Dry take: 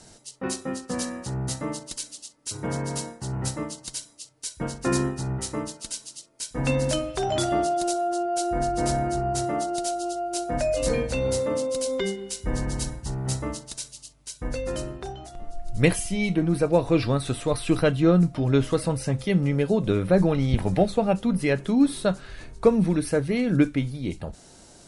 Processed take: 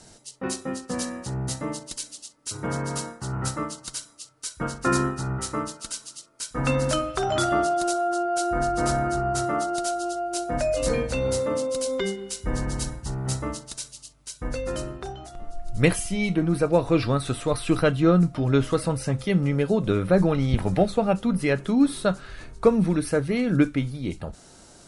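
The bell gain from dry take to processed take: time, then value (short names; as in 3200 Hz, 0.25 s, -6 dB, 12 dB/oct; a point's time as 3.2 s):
bell 1300 Hz 0.43 oct
1.95 s +1 dB
3.14 s +12.5 dB
9.96 s +12.5 dB
10.44 s +5 dB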